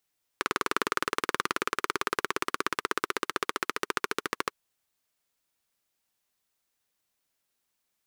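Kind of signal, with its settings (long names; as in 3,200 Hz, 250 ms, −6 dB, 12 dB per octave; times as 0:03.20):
pulse-train model of a single-cylinder engine, changing speed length 4.13 s, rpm 2,400, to 1,600, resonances 400/1,200 Hz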